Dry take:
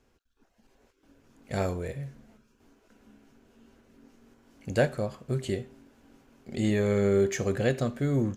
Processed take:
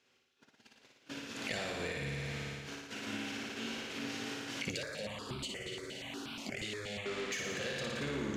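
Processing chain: octave divider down 1 oct, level -4 dB; gate -58 dBFS, range -25 dB; overdrive pedal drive 29 dB, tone 6.2 kHz, clips at -10.5 dBFS; frequency weighting D; flutter echo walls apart 9.8 m, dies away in 1.2 s; compression 10:1, threshold -34 dBFS, peak gain reduction 24.5 dB; bass shelf 240 Hz +9.5 dB; 4.71–7.06 s: stepped phaser 8.4 Hz 240–1900 Hz; trim -3.5 dB

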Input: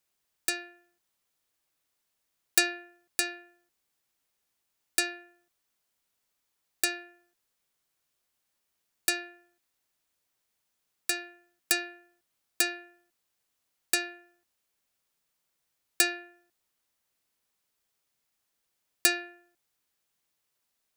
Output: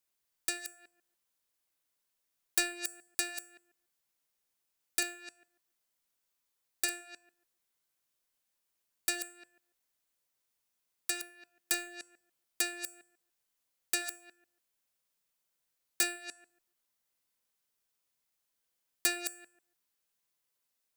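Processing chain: chunks repeated in reverse 143 ms, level -10.5 dB; in parallel at -5 dB: integer overflow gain 15.5 dB; on the sum: treble shelf 6.9 kHz +4 dB; hum notches 50/100/150 Hz; feedback comb 510 Hz, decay 0.47 s, mix 70%

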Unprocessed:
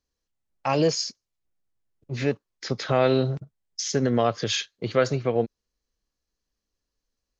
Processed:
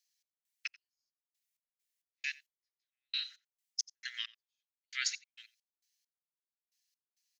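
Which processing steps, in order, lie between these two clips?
steep high-pass 1.8 kHz 48 dB/octave; treble shelf 4.8 kHz +8 dB; reverse; compression 6:1, threshold -29 dBFS, peak gain reduction 9.5 dB; reverse; trance gate "x.x...x." 67 bpm -60 dB; on a send: delay 88 ms -22 dB; on the sum: trim +1 dB

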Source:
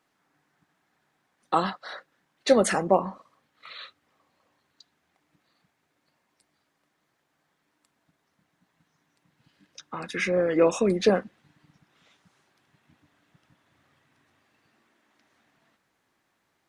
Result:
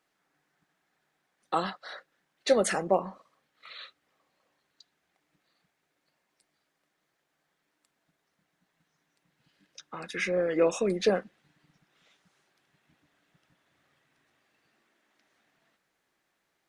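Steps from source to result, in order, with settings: fifteen-band graphic EQ 100 Hz -11 dB, 250 Hz -5 dB, 1 kHz -4 dB; trim -2.5 dB

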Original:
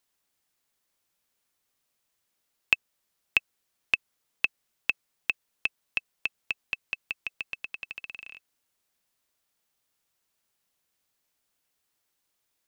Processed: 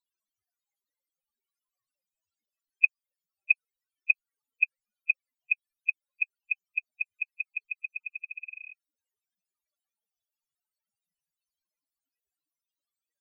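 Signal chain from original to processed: loudest bins only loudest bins 8; speed mistake 25 fps video run at 24 fps; trim +2.5 dB

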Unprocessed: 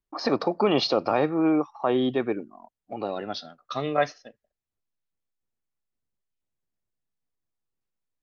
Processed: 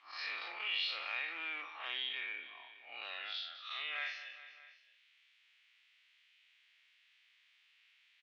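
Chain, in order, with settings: spectral blur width 109 ms; in parallel at -12 dB: wavefolder -27.5 dBFS; on the sum: Butterworth band-pass 2.6 kHz, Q 1.8; feedback delay 206 ms, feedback 42%, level -23 dB; level flattener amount 50%

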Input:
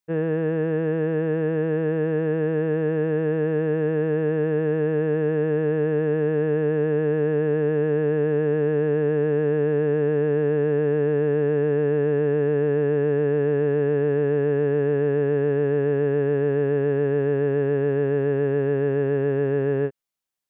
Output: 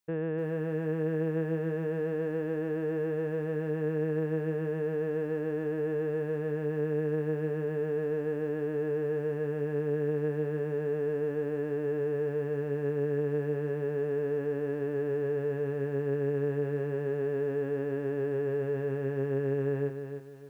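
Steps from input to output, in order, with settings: peak limiter -24 dBFS, peak gain reduction 10.5 dB; bit-crushed delay 302 ms, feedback 35%, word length 10-bit, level -8 dB

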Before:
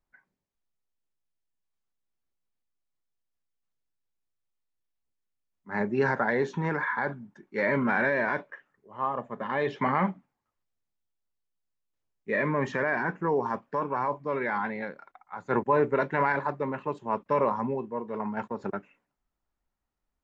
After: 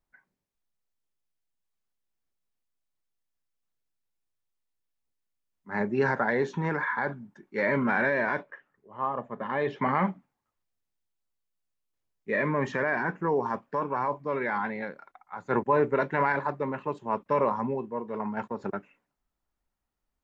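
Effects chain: 8.43–9.89 s: treble shelf 3.9 kHz -7.5 dB

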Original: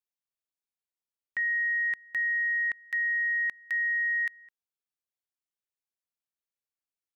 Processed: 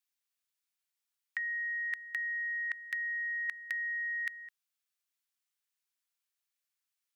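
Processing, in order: high-pass 1.3 kHz 12 dB/octave; compressor with a negative ratio -33 dBFS, ratio -0.5

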